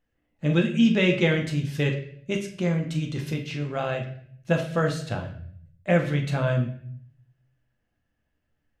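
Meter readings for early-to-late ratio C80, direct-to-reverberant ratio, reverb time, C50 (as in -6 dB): 12.5 dB, 2.0 dB, 0.60 s, 8.5 dB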